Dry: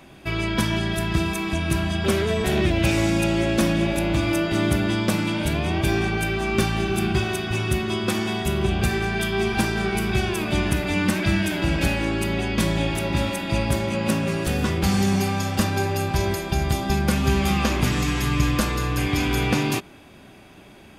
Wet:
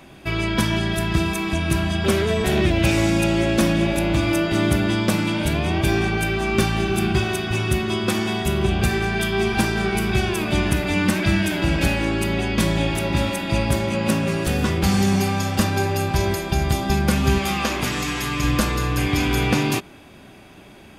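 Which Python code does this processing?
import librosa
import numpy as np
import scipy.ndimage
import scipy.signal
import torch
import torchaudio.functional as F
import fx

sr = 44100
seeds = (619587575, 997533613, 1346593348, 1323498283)

y = fx.low_shelf(x, sr, hz=210.0, db=-11.0, at=(17.38, 18.44))
y = y * librosa.db_to_amplitude(2.0)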